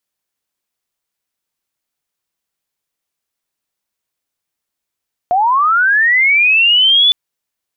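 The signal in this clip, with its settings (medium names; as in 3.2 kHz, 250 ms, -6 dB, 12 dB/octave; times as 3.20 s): sweep linear 690 Hz -> 3.5 kHz -9.5 dBFS -> -6.5 dBFS 1.81 s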